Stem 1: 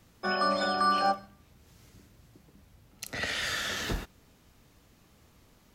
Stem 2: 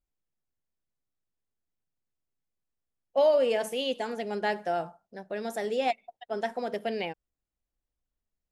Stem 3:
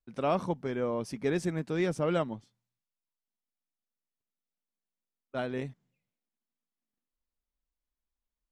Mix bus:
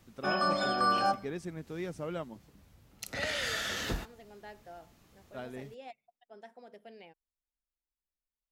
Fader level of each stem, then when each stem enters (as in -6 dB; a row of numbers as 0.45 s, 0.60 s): -2.0 dB, -20.0 dB, -9.0 dB; 0.00 s, 0.00 s, 0.00 s